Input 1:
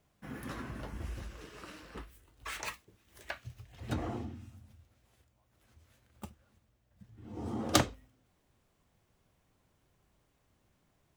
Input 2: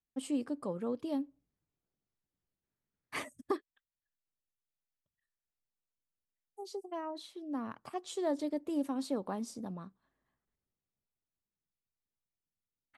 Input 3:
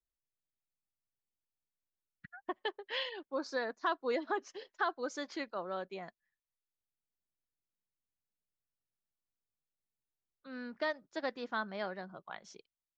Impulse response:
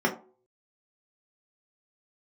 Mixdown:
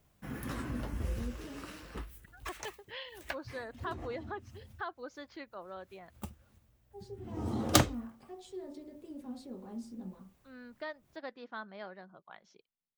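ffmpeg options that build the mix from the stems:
-filter_complex "[0:a]lowshelf=f=130:g=5.5,highshelf=f=12k:g=9.5,volume=1dB[a];[1:a]alimiter=level_in=8.5dB:limit=-24dB:level=0:latency=1:release=31,volume=-8.5dB,adelay=350,volume=-10.5dB,asplit=2[b][c];[c]volume=-12dB[d];[2:a]lowpass=4.7k,volume=-6.5dB,asplit=2[e][f];[f]apad=whole_len=492350[g];[a][g]sidechaincompress=threshold=-52dB:ratio=8:attack=11:release=166[h];[3:a]atrim=start_sample=2205[i];[d][i]afir=irnorm=-1:irlink=0[j];[h][b][e][j]amix=inputs=4:normalize=0"

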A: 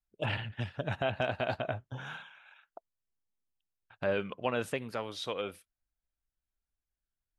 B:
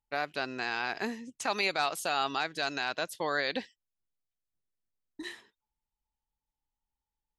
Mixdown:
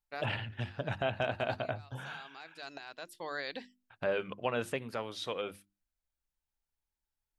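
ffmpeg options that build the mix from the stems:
-filter_complex "[0:a]volume=-1dB,asplit=2[a][b];[1:a]bandreject=f=6.3k:w=11,volume=-8dB[c];[b]apad=whole_len=325743[d];[c][d]sidechaincompress=threshold=-52dB:ratio=10:attack=32:release=801[e];[a][e]amix=inputs=2:normalize=0,bandreject=f=50:t=h:w=6,bandreject=f=100:t=h:w=6,bandreject=f=150:t=h:w=6,bandreject=f=200:t=h:w=6,bandreject=f=250:t=h:w=6,bandreject=f=300:t=h:w=6,bandreject=f=350:t=h:w=6"

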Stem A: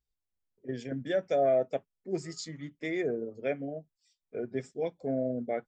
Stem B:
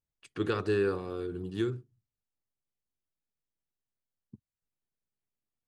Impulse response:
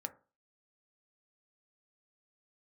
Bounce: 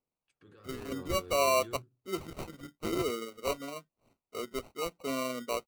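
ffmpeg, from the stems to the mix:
-filter_complex "[0:a]highpass=220,equalizer=f=3k:t=o:w=2:g=7,acrusher=samples=26:mix=1:aa=0.000001,volume=-2.5dB,asplit=2[a][b];[1:a]alimiter=level_in=3.5dB:limit=-24dB:level=0:latency=1:release=24,volume=-3.5dB,adelay=50,volume=-12.5dB,asplit=2[c][d];[d]volume=-6.5dB[e];[b]apad=whole_len=252346[f];[c][f]sidechaingate=range=-33dB:threshold=-55dB:ratio=16:detection=peak[g];[2:a]atrim=start_sample=2205[h];[e][h]afir=irnorm=-1:irlink=0[i];[a][g][i]amix=inputs=3:normalize=0,aphaser=in_gain=1:out_gain=1:delay=2.1:decay=0.23:speed=1:type=triangular"

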